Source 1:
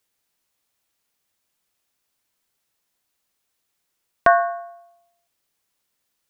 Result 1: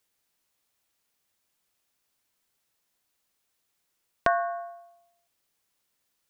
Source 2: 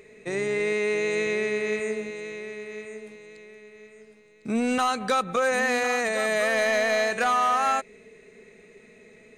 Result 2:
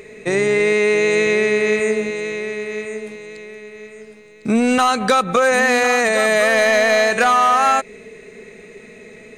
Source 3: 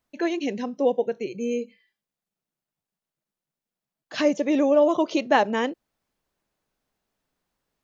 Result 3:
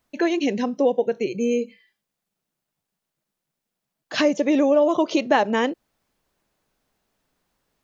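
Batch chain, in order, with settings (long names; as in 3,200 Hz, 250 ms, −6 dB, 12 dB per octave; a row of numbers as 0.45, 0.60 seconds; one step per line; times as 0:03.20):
downward compressor 2 to 1, threshold −25 dBFS
normalise the peak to −6 dBFS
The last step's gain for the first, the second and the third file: −1.5, +11.5, +6.5 decibels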